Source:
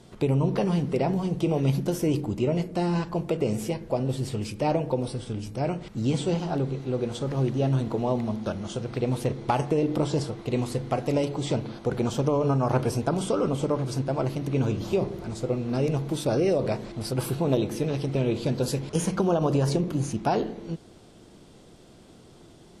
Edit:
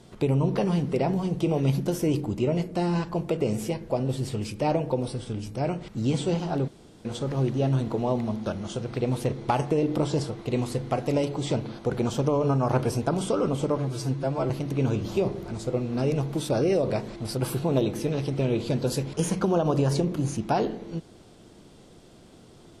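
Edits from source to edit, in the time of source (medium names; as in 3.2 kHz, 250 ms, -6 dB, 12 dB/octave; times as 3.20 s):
6.68–7.05 s: room tone
13.78–14.26 s: stretch 1.5×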